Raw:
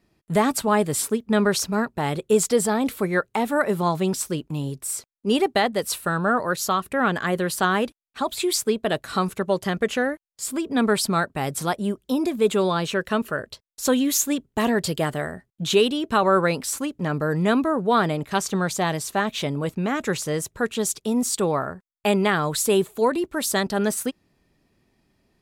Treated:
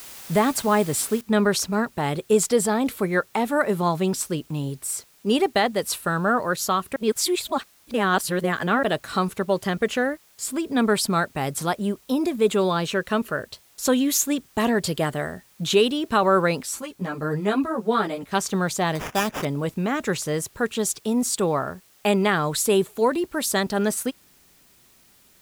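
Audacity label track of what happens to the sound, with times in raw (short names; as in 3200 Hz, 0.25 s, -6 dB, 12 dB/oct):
1.210000	1.210000	noise floor step -41 dB -57 dB
6.960000	8.830000	reverse
16.630000	18.330000	ensemble effect
18.950000	19.450000	sample-rate reducer 4200 Hz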